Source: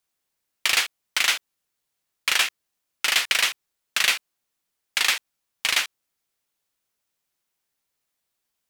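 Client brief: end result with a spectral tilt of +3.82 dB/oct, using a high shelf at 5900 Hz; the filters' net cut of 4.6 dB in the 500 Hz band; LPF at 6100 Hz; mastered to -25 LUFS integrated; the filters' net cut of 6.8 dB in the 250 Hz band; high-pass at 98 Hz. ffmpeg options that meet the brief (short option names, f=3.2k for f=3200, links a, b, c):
-af "highpass=98,lowpass=6.1k,equalizer=f=250:t=o:g=-7.5,equalizer=f=500:t=o:g=-4.5,highshelf=f=5.9k:g=3.5,volume=-2dB"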